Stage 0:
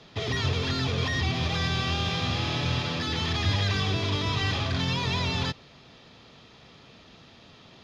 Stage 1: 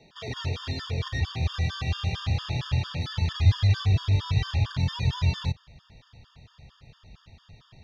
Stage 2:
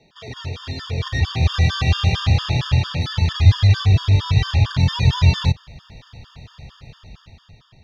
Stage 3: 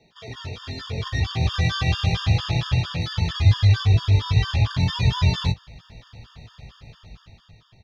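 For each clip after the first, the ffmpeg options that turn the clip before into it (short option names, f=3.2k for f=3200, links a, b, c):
-af "asubboost=boost=12:cutoff=86,afftfilt=real='re*gt(sin(2*PI*4.4*pts/sr)*(1-2*mod(floor(b*sr/1024/920),2)),0)':imag='im*gt(sin(2*PI*4.4*pts/sr)*(1-2*mod(floor(b*sr/1024/920),2)),0)':win_size=1024:overlap=0.75,volume=-3dB"
-af "dynaudnorm=f=260:g=9:m=13dB"
-filter_complex "[0:a]asplit=2[a][b];[b]adelay=18,volume=-8dB[c];[a][c]amix=inputs=2:normalize=0,volume=-3.5dB"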